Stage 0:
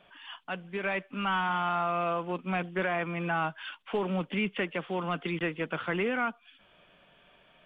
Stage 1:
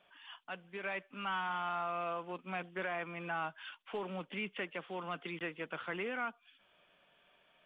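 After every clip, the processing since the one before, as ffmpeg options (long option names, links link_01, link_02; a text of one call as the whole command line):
ffmpeg -i in.wav -af "lowshelf=frequency=250:gain=-9.5,volume=-7dB" out.wav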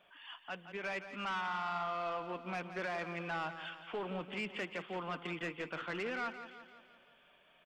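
ffmpeg -i in.wav -af "asoftclip=type=tanh:threshold=-34dB,aecho=1:1:171|342|513|684|855|1026:0.282|0.149|0.0792|0.042|0.0222|0.0118,volume=2dB" out.wav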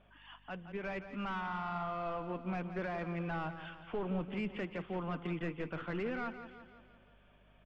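ffmpeg -i in.wav -af "aemphasis=mode=reproduction:type=riaa,aeval=exprs='val(0)+0.000631*(sin(2*PI*50*n/s)+sin(2*PI*2*50*n/s)/2+sin(2*PI*3*50*n/s)/3+sin(2*PI*4*50*n/s)/4+sin(2*PI*5*50*n/s)/5)':channel_layout=same,volume=-1.5dB" out.wav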